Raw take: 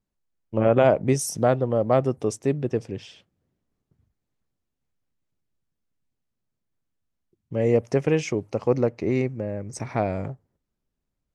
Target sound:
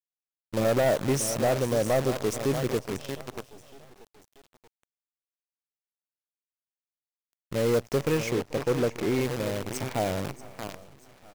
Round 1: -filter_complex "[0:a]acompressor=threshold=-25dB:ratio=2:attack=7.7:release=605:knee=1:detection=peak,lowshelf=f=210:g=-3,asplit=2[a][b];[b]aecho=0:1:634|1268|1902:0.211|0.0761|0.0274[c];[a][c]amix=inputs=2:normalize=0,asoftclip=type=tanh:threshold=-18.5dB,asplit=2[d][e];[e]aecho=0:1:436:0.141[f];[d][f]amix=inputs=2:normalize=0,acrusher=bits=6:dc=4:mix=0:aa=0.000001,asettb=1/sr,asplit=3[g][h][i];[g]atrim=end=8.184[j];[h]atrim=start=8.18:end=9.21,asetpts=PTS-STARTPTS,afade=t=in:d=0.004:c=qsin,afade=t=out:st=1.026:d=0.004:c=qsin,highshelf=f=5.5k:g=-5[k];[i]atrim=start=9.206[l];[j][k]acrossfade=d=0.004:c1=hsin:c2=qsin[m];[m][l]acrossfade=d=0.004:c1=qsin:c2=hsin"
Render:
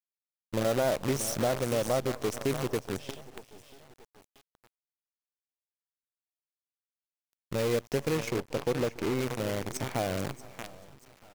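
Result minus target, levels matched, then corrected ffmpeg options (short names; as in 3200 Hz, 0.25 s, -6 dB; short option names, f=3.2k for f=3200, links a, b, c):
compressor: peak gain reduction +8 dB
-filter_complex "[0:a]lowshelf=f=210:g=-3,asplit=2[a][b];[b]aecho=0:1:634|1268|1902:0.211|0.0761|0.0274[c];[a][c]amix=inputs=2:normalize=0,asoftclip=type=tanh:threshold=-18.5dB,asplit=2[d][e];[e]aecho=0:1:436:0.141[f];[d][f]amix=inputs=2:normalize=0,acrusher=bits=6:dc=4:mix=0:aa=0.000001,asettb=1/sr,asplit=3[g][h][i];[g]atrim=end=8.184[j];[h]atrim=start=8.18:end=9.21,asetpts=PTS-STARTPTS,afade=t=in:d=0.004:c=qsin,afade=t=out:st=1.026:d=0.004:c=qsin,highshelf=f=5.5k:g=-5[k];[i]atrim=start=9.206[l];[j][k]acrossfade=d=0.004:c1=hsin:c2=qsin[m];[m][l]acrossfade=d=0.004:c1=qsin:c2=hsin"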